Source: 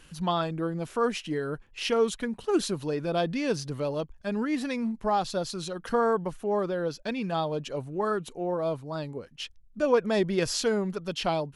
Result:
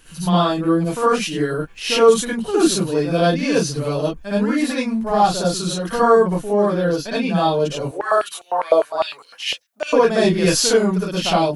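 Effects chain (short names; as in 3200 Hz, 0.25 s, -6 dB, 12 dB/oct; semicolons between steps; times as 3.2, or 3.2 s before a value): high shelf 8900 Hz +10 dB; reverb, pre-delay 53 ms, DRR -8 dB; 7.91–9.93 stepped high-pass 9.9 Hz 530–3600 Hz; gain +1 dB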